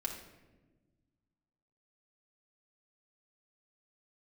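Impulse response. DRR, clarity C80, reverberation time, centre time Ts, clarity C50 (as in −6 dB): 0.0 dB, 8.5 dB, non-exponential decay, 28 ms, 5.5 dB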